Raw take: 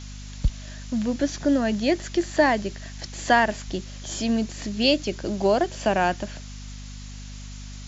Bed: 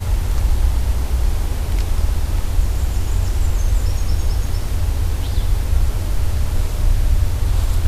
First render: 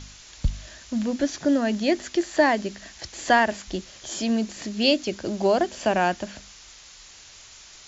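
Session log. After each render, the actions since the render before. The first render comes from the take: de-hum 50 Hz, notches 5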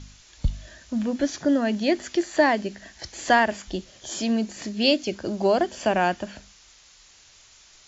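noise print and reduce 6 dB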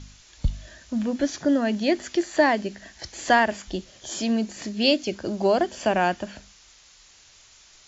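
no audible change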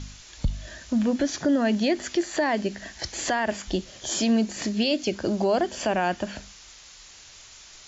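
in parallel at -1.5 dB: compression, threshold -30 dBFS, peak gain reduction 16 dB; on the sum: peak limiter -14.5 dBFS, peak gain reduction 9.5 dB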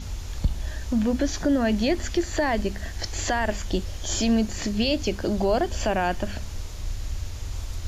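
add bed -15 dB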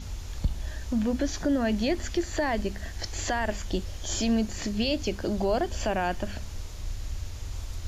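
trim -3.5 dB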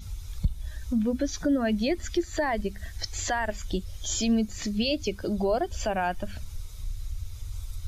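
expander on every frequency bin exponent 1.5; in parallel at +1.5 dB: compression, threshold -37 dBFS, peak gain reduction 16 dB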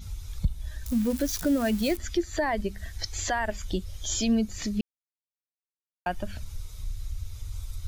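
0.86–1.97 s: zero-crossing glitches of -27 dBFS; 4.81–6.06 s: mute

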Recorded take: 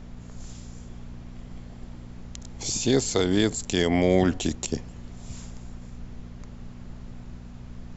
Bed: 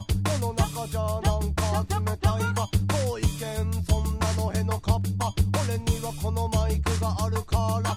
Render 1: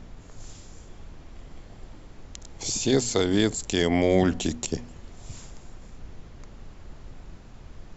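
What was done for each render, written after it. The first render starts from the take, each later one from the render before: de-hum 60 Hz, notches 4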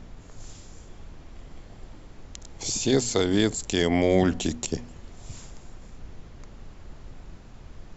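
no audible change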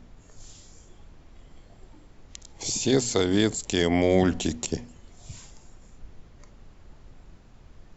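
noise print and reduce 6 dB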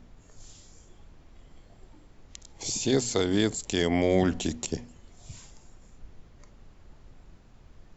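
trim -2.5 dB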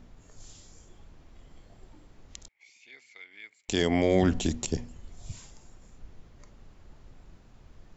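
2.48–3.69 s: band-pass filter 2.2 kHz, Q 15; 4.23–5.32 s: bass shelf 110 Hz +8 dB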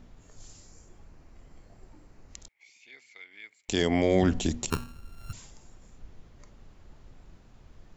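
0.47–2.36 s: peaking EQ 3.4 kHz -9 dB 0.38 oct; 4.70–5.33 s: sorted samples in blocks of 32 samples

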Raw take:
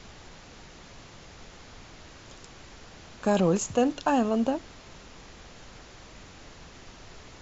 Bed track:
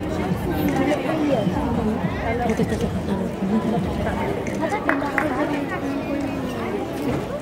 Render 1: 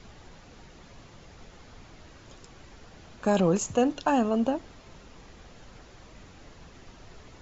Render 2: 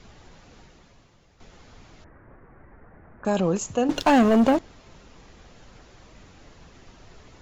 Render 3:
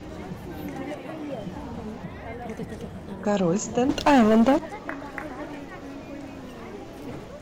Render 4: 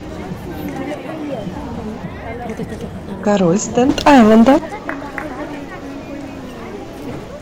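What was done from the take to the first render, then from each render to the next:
noise reduction 6 dB, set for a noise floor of -49 dBFS
0.59–1.40 s: fade out quadratic, to -10 dB; 2.04–3.25 s: steep low-pass 2 kHz 48 dB/octave; 3.89–4.59 s: waveshaping leveller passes 3
add bed track -13.5 dB
trim +9.5 dB

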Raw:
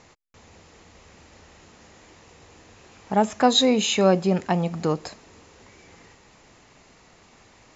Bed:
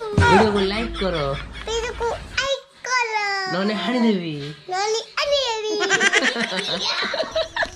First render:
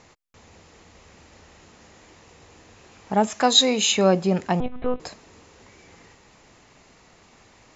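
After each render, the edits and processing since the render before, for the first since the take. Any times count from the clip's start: 3.27–3.92 s: tilt EQ +2 dB/octave; 4.60–5.00 s: monotone LPC vocoder at 8 kHz 250 Hz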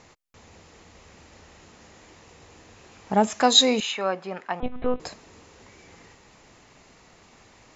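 3.80–4.63 s: band-pass filter 1.4 kHz, Q 1.1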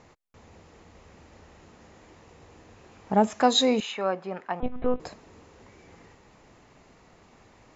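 treble shelf 2 kHz -9 dB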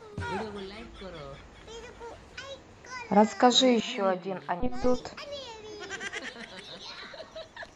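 add bed -20 dB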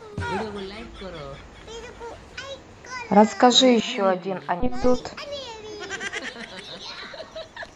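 trim +6 dB; peak limiter -3 dBFS, peak gain reduction 1.5 dB

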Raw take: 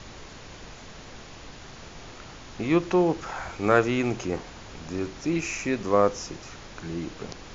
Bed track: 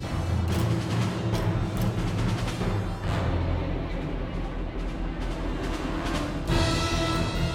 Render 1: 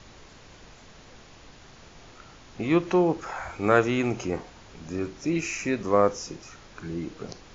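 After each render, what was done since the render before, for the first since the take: noise print and reduce 6 dB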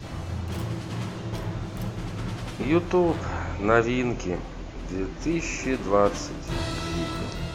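add bed track -5.5 dB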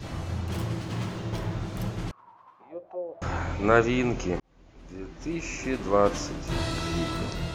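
0.79–1.60 s: median filter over 3 samples; 2.11–3.22 s: auto-wah 550–1300 Hz, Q 14, down, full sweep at -18 dBFS; 4.40–6.24 s: fade in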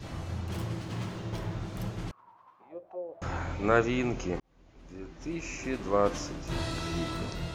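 trim -4 dB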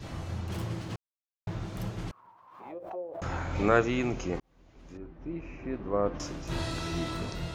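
0.96–1.47 s: mute; 2.10–3.80 s: swell ahead of each attack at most 62 dB/s; 4.97–6.20 s: tape spacing loss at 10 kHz 45 dB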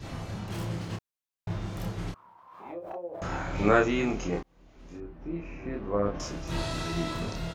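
doubling 29 ms -2.5 dB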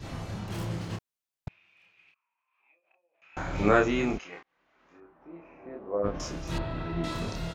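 1.48–3.37 s: band-pass filter 2.5 kHz, Q 16; 4.17–6.03 s: band-pass filter 2.4 kHz -> 530 Hz, Q 1.3; 6.58–7.04 s: distance through air 480 m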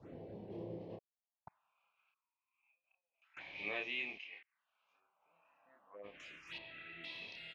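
band-pass sweep 450 Hz -> 2.5 kHz, 0.73–2.73 s; touch-sensitive phaser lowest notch 290 Hz, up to 1.4 kHz, full sweep at -44.5 dBFS

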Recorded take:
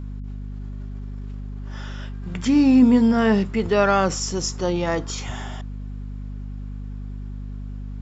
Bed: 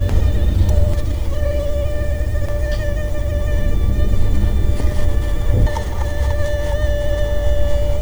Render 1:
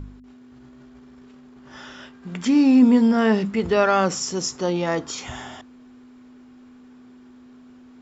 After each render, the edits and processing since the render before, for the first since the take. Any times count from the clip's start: de-hum 50 Hz, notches 4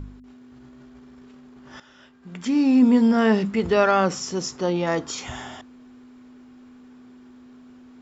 1.80–3.15 s: fade in linear, from -14 dB; 3.91–4.87 s: distance through air 67 m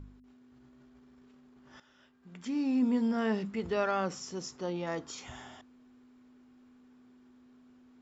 trim -12 dB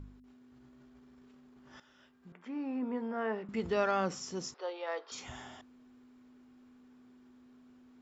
2.32–3.49 s: three-band isolator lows -16 dB, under 330 Hz, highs -23 dB, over 2.3 kHz; 4.54–5.12 s: elliptic band-pass 460–4400 Hz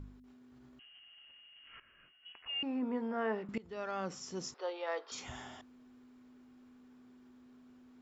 0.79–2.63 s: frequency inversion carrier 3.1 kHz; 3.58–4.63 s: fade in, from -22.5 dB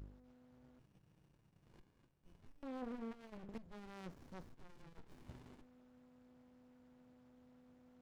valve stage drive 34 dB, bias 0.6; sliding maximum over 65 samples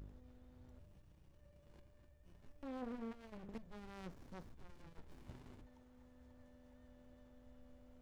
add bed -48.5 dB

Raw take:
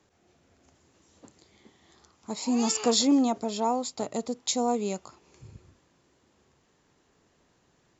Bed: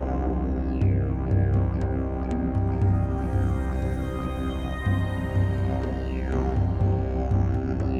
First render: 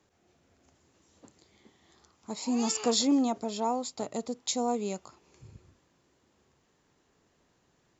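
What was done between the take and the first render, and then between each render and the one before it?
trim -3 dB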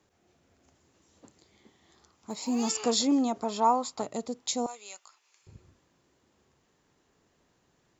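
2.30–2.71 s: block-companded coder 7-bit; 3.39–4.02 s: peaking EQ 1.1 kHz +11.5 dB 1 oct; 4.66–5.47 s: high-pass 1.4 kHz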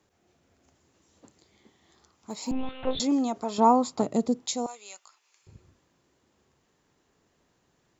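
2.51–3.00 s: monotone LPC vocoder at 8 kHz 260 Hz; 3.58–4.46 s: peaking EQ 200 Hz +11.5 dB 2.9 oct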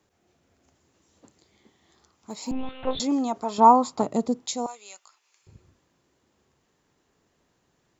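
dynamic bell 990 Hz, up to +7 dB, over -38 dBFS, Q 1.5

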